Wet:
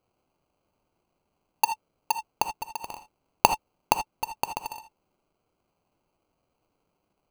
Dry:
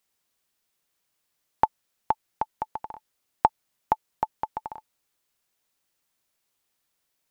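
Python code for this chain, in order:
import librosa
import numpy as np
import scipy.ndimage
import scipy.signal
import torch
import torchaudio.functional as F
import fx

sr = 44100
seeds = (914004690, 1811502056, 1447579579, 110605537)

y = fx.sample_hold(x, sr, seeds[0], rate_hz=1800.0, jitter_pct=0)
y = fx.rev_gated(y, sr, seeds[1], gate_ms=100, shape='rising', drr_db=8.5)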